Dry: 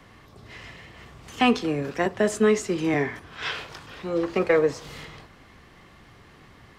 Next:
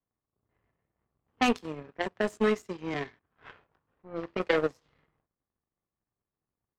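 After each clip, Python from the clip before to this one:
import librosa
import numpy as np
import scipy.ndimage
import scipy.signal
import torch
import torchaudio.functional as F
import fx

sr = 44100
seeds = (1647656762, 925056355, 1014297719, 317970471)

y = fx.power_curve(x, sr, exponent=2.0)
y = fx.env_lowpass(y, sr, base_hz=1100.0, full_db=-26.0)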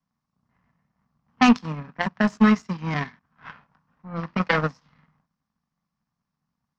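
y = fx.curve_eq(x, sr, hz=(110.0, 160.0, 240.0, 360.0, 1000.0, 1500.0, 3500.0, 5500.0, 9700.0), db=(0, 12, 9, -11, 7, 5, 0, 6, -17))
y = F.gain(torch.from_numpy(y), 4.0).numpy()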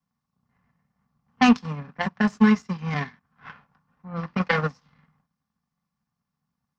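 y = fx.notch_comb(x, sr, f0_hz=320.0)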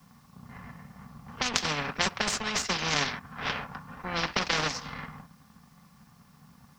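y = fx.over_compress(x, sr, threshold_db=-25.0, ratio=-1.0)
y = fx.spectral_comp(y, sr, ratio=4.0)
y = F.gain(torch.from_numpy(y), 5.5).numpy()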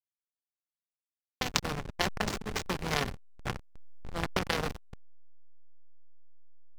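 y = fx.backlash(x, sr, play_db=-19.0)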